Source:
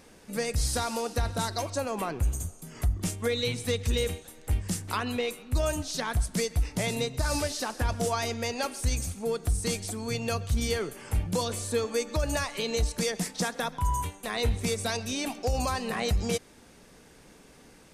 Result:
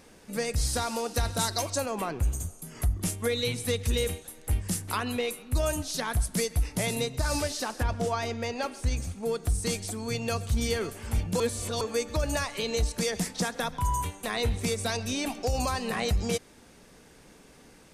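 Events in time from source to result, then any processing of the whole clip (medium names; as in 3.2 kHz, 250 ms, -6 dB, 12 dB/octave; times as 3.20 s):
1.14–1.86 s: treble shelf 3.6 kHz +8 dB
2.50–7.16 s: peaking EQ 11 kHz +8.5 dB 0.36 oct
7.83–9.23 s: low-pass 3.2 kHz 6 dB/octave
9.78–10.67 s: echo throw 530 ms, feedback 65%, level -14 dB
11.40–11.81 s: reverse
13.12–16.05 s: three bands compressed up and down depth 40%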